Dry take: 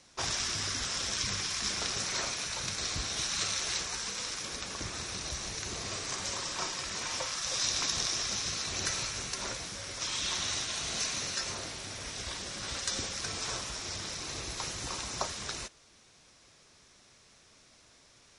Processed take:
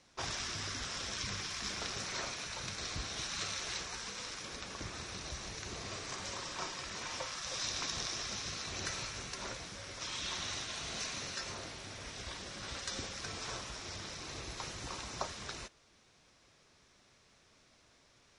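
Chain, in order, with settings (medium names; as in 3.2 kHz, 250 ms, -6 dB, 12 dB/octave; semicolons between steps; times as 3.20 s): 1.36–2.05 s: short-mantissa float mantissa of 4-bit; treble shelf 6.9 kHz -11.5 dB; trim -3.5 dB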